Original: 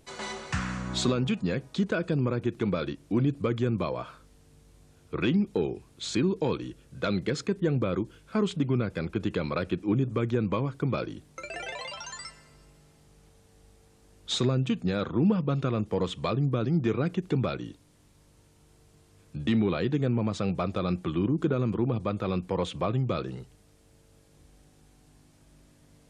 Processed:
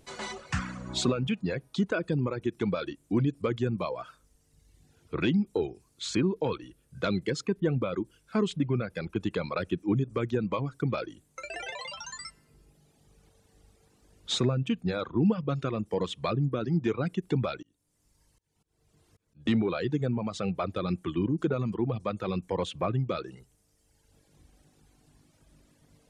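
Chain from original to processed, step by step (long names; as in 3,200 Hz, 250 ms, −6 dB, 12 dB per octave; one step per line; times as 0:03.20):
reverb reduction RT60 1.4 s
0:17.62–0:19.46: volume swells 479 ms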